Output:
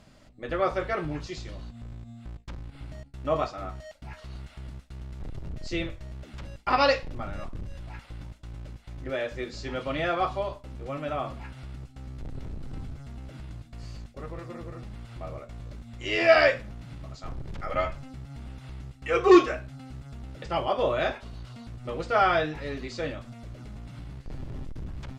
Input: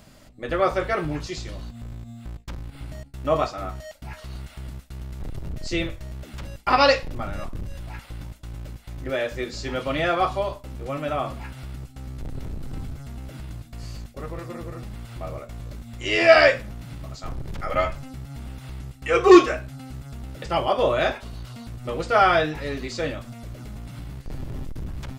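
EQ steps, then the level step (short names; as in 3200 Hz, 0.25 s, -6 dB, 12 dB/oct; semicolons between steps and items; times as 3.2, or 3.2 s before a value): air absorption 51 m; -4.5 dB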